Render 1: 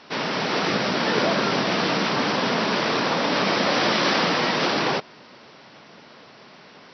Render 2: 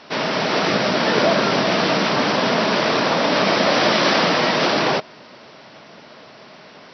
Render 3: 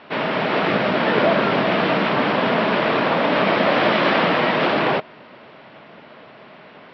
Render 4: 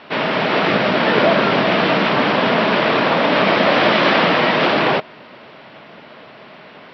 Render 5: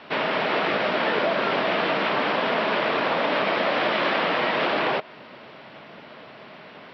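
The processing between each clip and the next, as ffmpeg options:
-af "equalizer=f=630:w=6.3:g=5.5,volume=1.5"
-af "lowpass=f=3200:w=0.5412,lowpass=f=3200:w=1.3066"
-af "aemphasis=mode=production:type=cd,volume=1.41"
-filter_complex "[0:a]acrossover=split=310|4000[s0][s1][s2];[s0]acompressor=threshold=0.0158:ratio=4[s3];[s1]acompressor=threshold=0.141:ratio=4[s4];[s2]acompressor=threshold=0.00794:ratio=4[s5];[s3][s4][s5]amix=inputs=3:normalize=0,volume=0.668"

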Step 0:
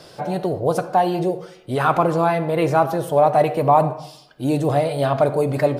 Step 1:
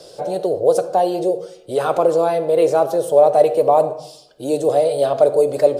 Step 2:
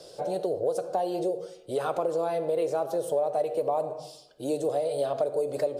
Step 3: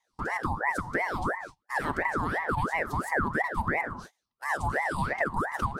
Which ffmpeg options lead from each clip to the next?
-filter_complex "[0:a]equalizer=f=125:t=o:w=1:g=-4,equalizer=f=250:t=o:w=1:g=-4,equalizer=f=500:t=o:w=1:g=12,equalizer=f=1000:t=o:w=1:g=-5,equalizer=f=2000:t=o:w=1:g=-7,equalizer=f=4000:t=o:w=1:g=3,equalizer=f=8000:t=o:w=1:g=8,acrossover=split=240[s0][s1];[s0]alimiter=level_in=2.24:limit=0.0631:level=0:latency=1:release=118,volume=0.447[s2];[s2][s1]amix=inputs=2:normalize=0,volume=0.794"
-af "acompressor=threshold=0.126:ratio=4,volume=0.473"
-af "highpass=150,agate=range=0.0398:threshold=0.01:ratio=16:detection=peak,aeval=exprs='val(0)*sin(2*PI*920*n/s+920*0.6/2.9*sin(2*PI*2.9*n/s))':c=same,volume=1.19"

